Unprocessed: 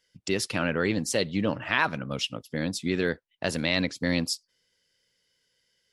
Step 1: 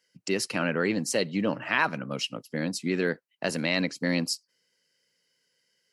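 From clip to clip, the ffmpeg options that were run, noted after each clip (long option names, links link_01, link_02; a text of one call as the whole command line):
ffmpeg -i in.wav -af "highpass=frequency=140:width=0.5412,highpass=frequency=140:width=1.3066,bandreject=frequency=3500:width=5.1" out.wav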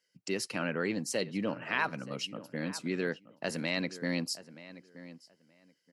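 ffmpeg -i in.wav -filter_complex "[0:a]asplit=2[link_01][link_02];[link_02]adelay=926,lowpass=frequency=2500:poles=1,volume=-15.5dB,asplit=2[link_03][link_04];[link_04]adelay=926,lowpass=frequency=2500:poles=1,volume=0.19[link_05];[link_01][link_03][link_05]amix=inputs=3:normalize=0,volume=-6dB" out.wav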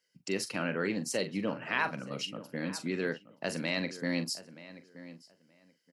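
ffmpeg -i in.wav -filter_complex "[0:a]asplit=2[link_01][link_02];[link_02]adelay=42,volume=-11dB[link_03];[link_01][link_03]amix=inputs=2:normalize=0" out.wav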